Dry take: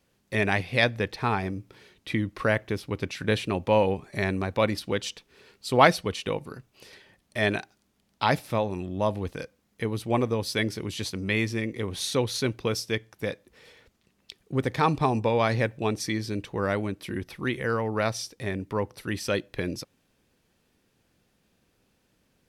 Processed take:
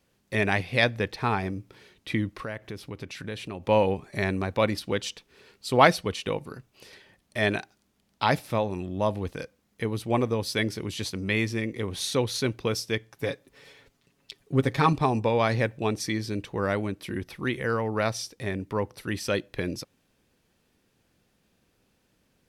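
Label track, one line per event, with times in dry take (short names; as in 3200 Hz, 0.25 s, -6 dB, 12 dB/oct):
2.280000	3.690000	compressor 2.5:1, threshold -36 dBFS
13.110000	14.930000	comb 7.2 ms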